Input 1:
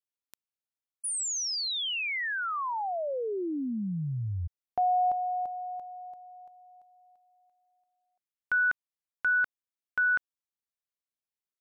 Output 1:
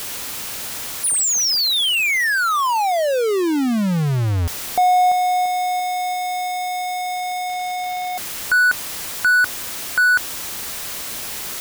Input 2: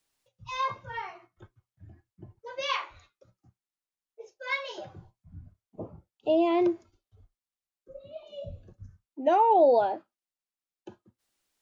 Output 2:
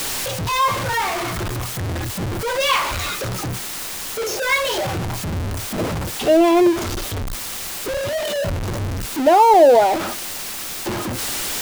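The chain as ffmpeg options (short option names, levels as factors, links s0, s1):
-af "aeval=exprs='val(0)+0.5*0.0473*sgn(val(0))':c=same,volume=2.51"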